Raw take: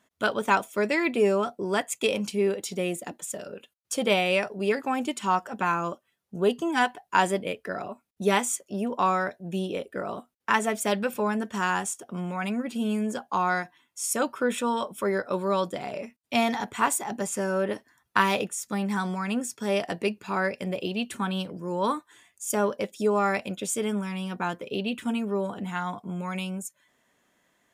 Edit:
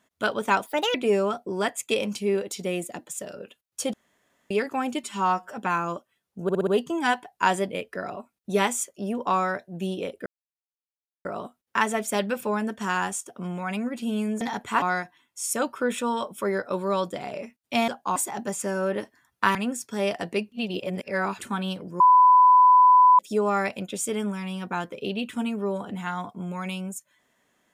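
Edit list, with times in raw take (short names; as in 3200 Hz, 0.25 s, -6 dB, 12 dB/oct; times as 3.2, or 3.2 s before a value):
0.66–1.07 speed 144%
4.06–4.63 room tone
5.16–5.49 stretch 1.5×
6.39 stutter 0.06 s, 5 plays
9.98 insert silence 0.99 s
13.14–13.42 swap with 16.48–16.89
18.28–19.24 cut
20.21–21.1 reverse
21.69–22.88 bleep 1000 Hz -11.5 dBFS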